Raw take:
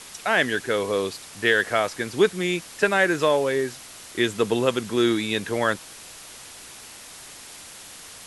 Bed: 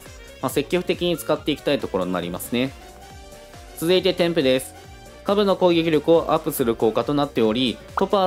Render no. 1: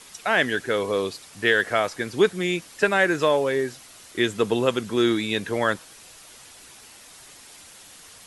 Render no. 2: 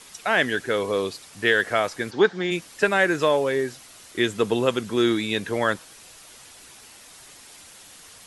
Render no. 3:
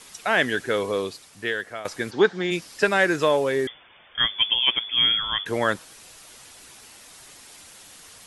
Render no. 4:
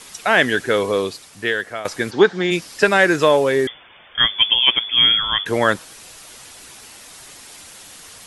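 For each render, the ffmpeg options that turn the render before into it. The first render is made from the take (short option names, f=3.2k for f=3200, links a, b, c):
-af "afftdn=nr=6:nf=-43"
-filter_complex "[0:a]asplit=3[a][b][c];[a]afade=t=out:st=2.1:d=0.02[d];[b]highpass=170,equalizer=f=830:t=q:w=4:g=8,equalizer=f=1.6k:t=q:w=4:g=6,equalizer=f=2.5k:t=q:w=4:g=-6,lowpass=f=5.5k:w=0.5412,lowpass=f=5.5k:w=1.3066,afade=t=in:st=2.1:d=0.02,afade=t=out:st=2.5:d=0.02[e];[c]afade=t=in:st=2.5:d=0.02[f];[d][e][f]amix=inputs=3:normalize=0"
-filter_complex "[0:a]asettb=1/sr,asplit=3[a][b][c];[a]atrim=end=2.534[d];[b]atrim=start=2.53:end=3.16,asetpts=PTS-STARTPTS,afade=t=in:d=0.004:c=qsin,afade=t=out:st=0.626:d=0.004:c=qsin,equalizer=f=5k:t=o:w=0.37:g=6.5[e];[c]atrim=start=3.156[f];[d][e]acrossfade=d=0.004:c1=hsin:c2=qsin[g];[g][f]acrossfade=d=0.004:c1=qsin:c2=hsin,asettb=1/sr,asplit=3[h][i][j];[h]atrim=end=3.674[k];[i]atrim=start=3.67:end=5.46,asetpts=PTS-STARTPTS,afade=t=in:d=0.004:c=qsin,afade=t=out:st=1.786:d=0.004:c=qsin,lowpass=f=3.1k:t=q:w=0.5098,lowpass=f=3.1k:t=q:w=0.6013,lowpass=f=3.1k:t=q:w=0.9,lowpass=f=3.1k:t=q:w=2.563,afreqshift=-3600[l];[j]atrim=start=5.456[m];[k][l]acrossfade=d=0.004:c1=hsin:c2=qsin[n];[n][m]acrossfade=d=0.004:c1=qsin:c2=hsin,asplit=2[o][p];[o]atrim=end=1.85,asetpts=PTS-STARTPTS,afade=t=out:st=0.77:d=1.08:silence=0.177828[q];[p]atrim=start=1.85,asetpts=PTS-STARTPTS,afade=t=in:d=0.004:c=hsin:silence=0.177828[r];[q][r]concat=n=2:v=0:a=1"
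-af "volume=6dB,alimiter=limit=-2dB:level=0:latency=1"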